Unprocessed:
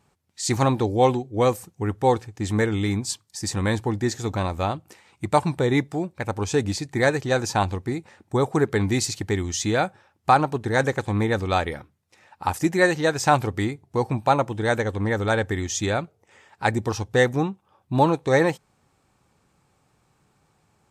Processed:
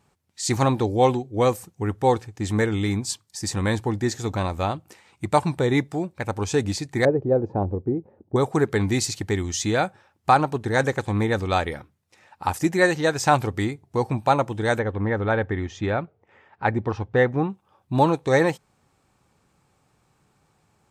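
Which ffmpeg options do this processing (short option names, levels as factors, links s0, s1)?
-filter_complex "[0:a]asettb=1/sr,asplit=3[s0][s1][s2];[s0]atrim=end=7.054[s3];[s1]atrim=start=7.05:end=8.36,asetpts=PTS-STARTPTS,afade=t=in:d=0.004:c=qsin,afade=t=out:st=1.306:d=0.004:c=qsin,lowpass=f=470:t=q:w=1.7[s4];[s2]atrim=start=8.356[s5];[s3][s4]acrossfade=d=0.004:c1=hsin:c2=qsin[s6];[s6][s5]acrossfade=d=0.004:c1=qsin:c2=hsin,asettb=1/sr,asplit=3[s7][s8][s9];[s7]atrim=end=14.794[s10];[s8]atrim=start=14.79:end=17.5,asetpts=PTS-STARTPTS,afade=t=in:d=0.004:c=qsin,afade=t=out:st=2.706:d=0.004:c=qsin,lowpass=2200[s11];[s9]atrim=start=17.496[s12];[s10][s11]acrossfade=d=0.004:c1=hsin:c2=qsin[s13];[s13][s12]acrossfade=d=0.004:c1=qsin:c2=hsin"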